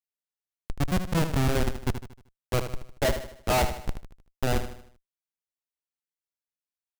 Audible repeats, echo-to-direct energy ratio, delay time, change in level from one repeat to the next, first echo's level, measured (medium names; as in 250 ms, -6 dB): 4, -8.5 dB, 77 ms, -7.0 dB, -9.5 dB